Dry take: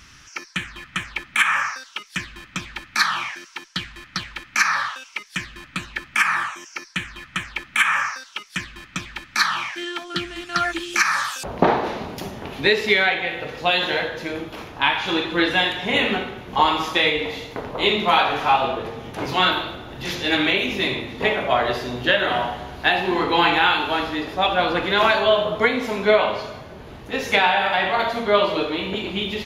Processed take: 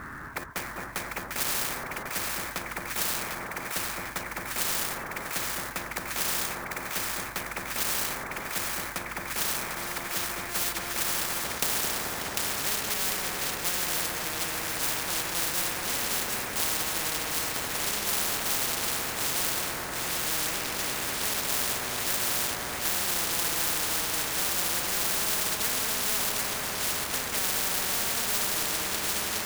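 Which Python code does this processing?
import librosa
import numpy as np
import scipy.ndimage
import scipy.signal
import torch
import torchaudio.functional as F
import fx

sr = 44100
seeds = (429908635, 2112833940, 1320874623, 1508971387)

p1 = (np.mod(10.0 ** (15.0 / 20.0) * x + 1.0, 2.0) - 1.0) / 10.0 ** (15.0 / 20.0)
p2 = x + (p1 * librosa.db_to_amplitude(-4.0))
p3 = scipy.signal.sosfilt(scipy.signal.ellip(4, 1.0, 60, 1700.0, 'lowpass', fs=sr, output='sos'), p2)
p4 = fx.low_shelf(p3, sr, hz=88.0, db=-9.0)
p5 = fx.quant_float(p4, sr, bits=2)
p6 = fx.echo_split(p5, sr, split_hz=1200.0, low_ms=219, high_ms=748, feedback_pct=52, wet_db=-4.5)
p7 = fx.spectral_comp(p6, sr, ratio=10.0)
y = p7 * librosa.db_to_amplitude(-6.5)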